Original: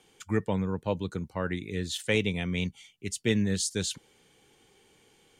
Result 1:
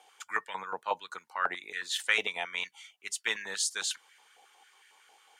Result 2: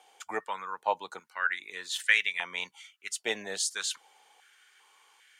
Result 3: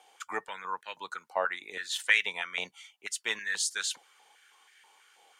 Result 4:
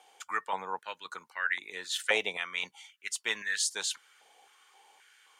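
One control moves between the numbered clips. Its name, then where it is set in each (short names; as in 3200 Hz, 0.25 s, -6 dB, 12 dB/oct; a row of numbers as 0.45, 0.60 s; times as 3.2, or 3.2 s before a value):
stepped high-pass, rate: 11, 2.5, 6.2, 3.8 Hz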